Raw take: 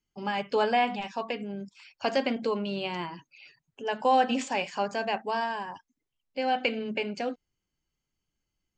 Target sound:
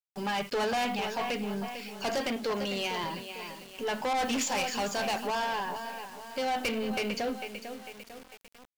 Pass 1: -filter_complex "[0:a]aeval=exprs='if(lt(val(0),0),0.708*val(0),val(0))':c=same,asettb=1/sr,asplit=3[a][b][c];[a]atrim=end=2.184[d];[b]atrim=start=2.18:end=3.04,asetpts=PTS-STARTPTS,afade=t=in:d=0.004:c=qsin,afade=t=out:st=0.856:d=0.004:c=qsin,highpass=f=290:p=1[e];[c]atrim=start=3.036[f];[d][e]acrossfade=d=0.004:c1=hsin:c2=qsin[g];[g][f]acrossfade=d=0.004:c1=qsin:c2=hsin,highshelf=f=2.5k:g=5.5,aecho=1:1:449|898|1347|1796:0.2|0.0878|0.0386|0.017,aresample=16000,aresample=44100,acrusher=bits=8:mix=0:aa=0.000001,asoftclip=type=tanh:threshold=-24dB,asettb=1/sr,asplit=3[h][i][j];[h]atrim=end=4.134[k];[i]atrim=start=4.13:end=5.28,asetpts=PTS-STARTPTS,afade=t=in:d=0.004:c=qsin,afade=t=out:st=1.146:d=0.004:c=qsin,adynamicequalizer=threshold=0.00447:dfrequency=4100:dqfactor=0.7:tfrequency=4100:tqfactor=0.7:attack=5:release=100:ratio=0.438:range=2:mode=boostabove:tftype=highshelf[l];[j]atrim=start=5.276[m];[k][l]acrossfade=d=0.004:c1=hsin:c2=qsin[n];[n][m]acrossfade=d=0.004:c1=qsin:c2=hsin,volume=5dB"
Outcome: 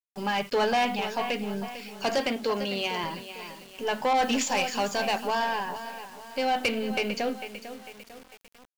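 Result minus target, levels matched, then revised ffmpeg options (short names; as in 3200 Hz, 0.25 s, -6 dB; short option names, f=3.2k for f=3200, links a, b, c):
soft clip: distortion -5 dB
-filter_complex "[0:a]aeval=exprs='if(lt(val(0),0),0.708*val(0),val(0))':c=same,asettb=1/sr,asplit=3[a][b][c];[a]atrim=end=2.184[d];[b]atrim=start=2.18:end=3.04,asetpts=PTS-STARTPTS,afade=t=in:d=0.004:c=qsin,afade=t=out:st=0.856:d=0.004:c=qsin,highpass=f=290:p=1[e];[c]atrim=start=3.036[f];[d][e]acrossfade=d=0.004:c1=hsin:c2=qsin[g];[g][f]acrossfade=d=0.004:c1=qsin:c2=hsin,highshelf=f=2.5k:g=5.5,aecho=1:1:449|898|1347|1796:0.2|0.0878|0.0386|0.017,aresample=16000,aresample=44100,acrusher=bits=8:mix=0:aa=0.000001,asoftclip=type=tanh:threshold=-31.5dB,asettb=1/sr,asplit=3[h][i][j];[h]atrim=end=4.134[k];[i]atrim=start=4.13:end=5.28,asetpts=PTS-STARTPTS,afade=t=in:d=0.004:c=qsin,afade=t=out:st=1.146:d=0.004:c=qsin,adynamicequalizer=threshold=0.00447:dfrequency=4100:dqfactor=0.7:tfrequency=4100:tqfactor=0.7:attack=5:release=100:ratio=0.438:range=2:mode=boostabove:tftype=highshelf[l];[j]atrim=start=5.276[m];[k][l]acrossfade=d=0.004:c1=hsin:c2=qsin[n];[n][m]acrossfade=d=0.004:c1=qsin:c2=hsin,volume=5dB"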